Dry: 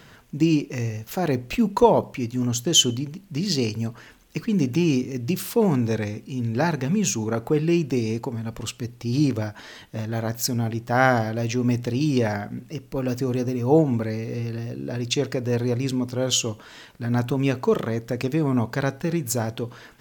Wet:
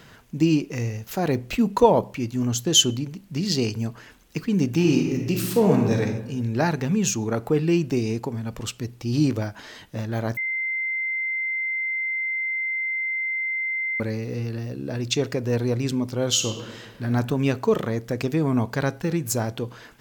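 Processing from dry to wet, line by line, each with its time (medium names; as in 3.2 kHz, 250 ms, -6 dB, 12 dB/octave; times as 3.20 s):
4.71–6.01 s: reverb throw, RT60 1.1 s, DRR 1.5 dB
10.37–14.00 s: bleep 2.08 kHz -23.5 dBFS
16.29–17.06 s: reverb throw, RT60 1.4 s, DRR 5.5 dB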